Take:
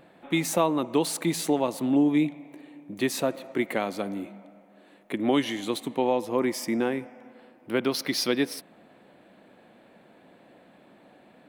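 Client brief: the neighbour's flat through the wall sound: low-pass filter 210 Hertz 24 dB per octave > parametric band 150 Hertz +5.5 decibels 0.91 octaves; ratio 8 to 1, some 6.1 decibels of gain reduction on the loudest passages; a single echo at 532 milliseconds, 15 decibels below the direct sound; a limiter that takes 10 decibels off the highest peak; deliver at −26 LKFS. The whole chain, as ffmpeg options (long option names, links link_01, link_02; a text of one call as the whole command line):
ffmpeg -i in.wav -af "acompressor=threshold=-24dB:ratio=8,alimiter=limit=-24dB:level=0:latency=1,lowpass=frequency=210:width=0.5412,lowpass=frequency=210:width=1.3066,equalizer=frequency=150:width_type=o:width=0.91:gain=5.5,aecho=1:1:532:0.178,volume=16dB" out.wav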